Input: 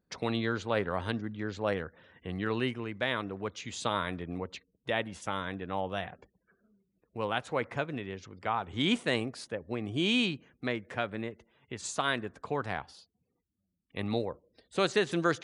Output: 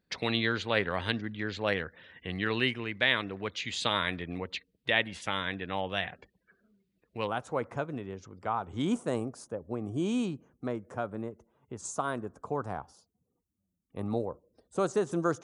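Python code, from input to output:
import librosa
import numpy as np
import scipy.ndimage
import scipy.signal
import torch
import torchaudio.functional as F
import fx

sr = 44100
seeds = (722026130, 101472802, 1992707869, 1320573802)

y = fx.band_shelf(x, sr, hz=2800.0, db=fx.steps((0.0, 8.0), (7.26, -9.0), (8.84, -15.5)), octaves=1.7)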